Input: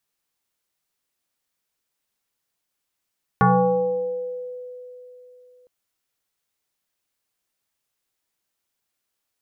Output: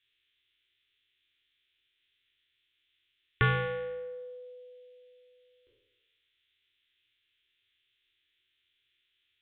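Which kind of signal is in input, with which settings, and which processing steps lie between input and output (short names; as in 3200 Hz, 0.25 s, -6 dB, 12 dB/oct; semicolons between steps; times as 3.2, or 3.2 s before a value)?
FM tone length 2.26 s, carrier 498 Hz, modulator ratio 0.63, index 2.8, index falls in 1.54 s exponential, decay 3.36 s, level -11.5 dB
spectral trails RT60 1.04 s; EQ curve 120 Hz 0 dB, 180 Hz -26 dB, 250 Hz -9 dB, 380 Hz -2 dB, 690 Hz -28 dB, 1800 Hz +4 dB, 3500 Hz +14 dB, 5000 Hz -29 dB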